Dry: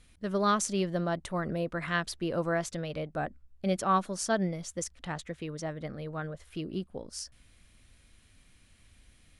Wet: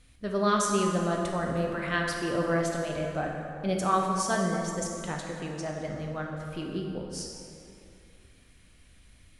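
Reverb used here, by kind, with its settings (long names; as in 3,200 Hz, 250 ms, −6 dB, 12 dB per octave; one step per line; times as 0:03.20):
dense smooth reverb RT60 2.6 s, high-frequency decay 0.6×, DRR 0 dB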